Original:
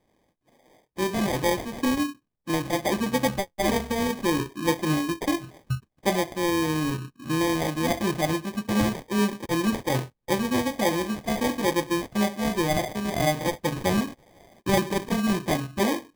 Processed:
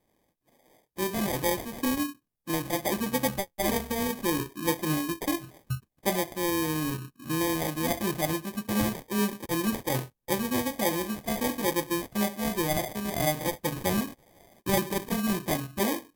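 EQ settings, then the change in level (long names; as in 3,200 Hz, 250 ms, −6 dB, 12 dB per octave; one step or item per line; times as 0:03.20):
parametric band 14,000 Hz +11.5 dB 0.94 octaves
−4.0 dB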